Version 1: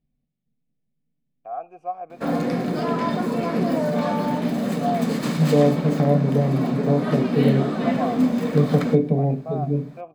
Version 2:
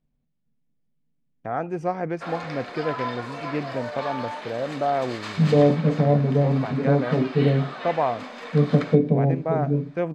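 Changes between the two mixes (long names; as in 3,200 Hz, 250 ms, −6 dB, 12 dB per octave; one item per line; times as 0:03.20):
first voice: remove formant filter a
background: add high-pass filter 980 Hz 12 dB per octave
master: add low-pass filter 4,700 Hz 12 dB per octave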